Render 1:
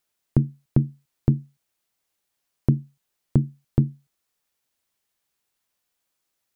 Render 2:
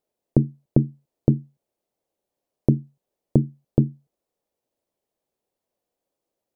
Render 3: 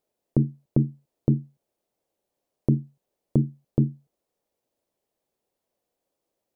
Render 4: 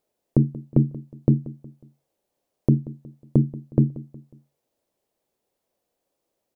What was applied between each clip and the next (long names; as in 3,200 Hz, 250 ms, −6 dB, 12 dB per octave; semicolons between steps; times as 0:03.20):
drawn EQ curve 110 Hz 0 dB, 560 Hz +11 dB, 1,400 Hz −9 dB; level −1.5 dB
brickwall limiter −8.5 dBFS, peak gain reduction 7 dB; level +1.5 dB
repeating echo 182 ms, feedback 42%, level −18 dB; level +3 dB